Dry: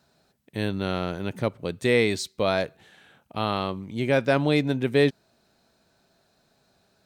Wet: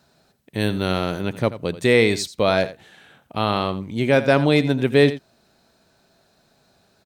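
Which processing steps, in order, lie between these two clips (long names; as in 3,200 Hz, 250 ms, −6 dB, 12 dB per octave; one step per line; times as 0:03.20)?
0:00.60–0:01.21: high-shelf EQ 6,400 Hz +9 dB
single-tap delay 85 ms −14.5 dB
level +5 dB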